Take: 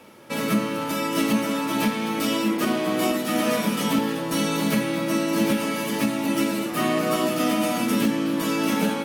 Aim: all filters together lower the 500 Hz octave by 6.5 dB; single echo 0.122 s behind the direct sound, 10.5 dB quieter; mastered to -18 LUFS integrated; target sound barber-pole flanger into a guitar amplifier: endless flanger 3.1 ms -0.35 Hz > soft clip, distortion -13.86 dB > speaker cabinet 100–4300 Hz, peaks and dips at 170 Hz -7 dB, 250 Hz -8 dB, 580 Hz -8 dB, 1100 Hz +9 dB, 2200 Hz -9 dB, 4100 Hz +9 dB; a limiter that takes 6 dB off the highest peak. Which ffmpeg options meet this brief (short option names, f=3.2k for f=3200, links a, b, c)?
-filter_complex "[0:a]equalizer=f=500:t=o:g=-3.5,alimiter=limit=-18dB:level=0:latency=1,aecho=1:1:122:0.299,asplit=2[a][b];[b]adelay=3.1,afreqshift=-0.35[c];[a][c]amix=inputs=2:normalize=1,asoftclip=threshold=-27dB,highpass=100,equalizer=f=170:t=q:w=4:g=-7,equalizer=f=250:t=q:w=4:g=-8,equalizer=f=580:t=q:w=4:g=-8,equalizer=f=1.1k:t=q:w=4:g=9,equalizer=f=2.2k:t=q:w=4:g=-9,equalizer=f=4.1k:t=q:w=4:g=9,lowpass=f=4.3k:w=0.5412,lowpass=f=4.3k:w=1.3066,volume=16dB"